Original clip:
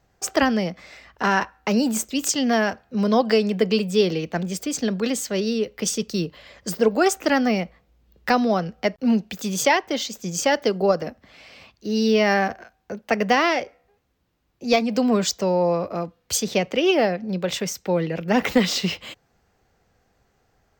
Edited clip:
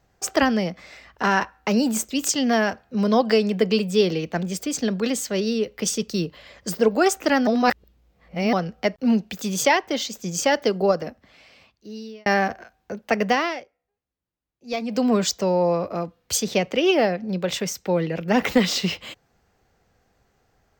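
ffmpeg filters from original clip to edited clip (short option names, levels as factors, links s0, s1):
-filter_complex "[0:a]asplit=6[s0][s1][s2][s3][s4][s5];[s0]atrim=end=7.472[s6];[s1]atrim=start=7.468:end=8.532,asetpts=PTS-STARTPTS,areverse[s7];[s2]atrim=start=8.528:end=12.26,asetpts=PTS-STARTPTS,afade=t=out:st=2.292:d=1.44[s8];[s3]atrim=start=12.26:end=13.67,asetpts=PTS-STARTPTS,afade=t=in:d=0.004:c=hsin,afade=t=out:st=0.98:d=0.43:silence=0.11885[s9];[s4]atrim=start=13.67:end=14.63,asetpts=PTS-STARTPTS,volume=0.119[s10];[s5]atrim=start=14.63,asetpts=PTS-STARTPTS,afade=t=in:d=0.43:silence=0.11885[s11];[s6][s7]acrossfade=d=0.004:c1=hsin:c2=hsin[s12];[s8][s9][s10][s11]concat=n=4:v=0:a=1[s13];[s12][s13]acrossfade=d=0.004:c1=hsin:c2=hsin"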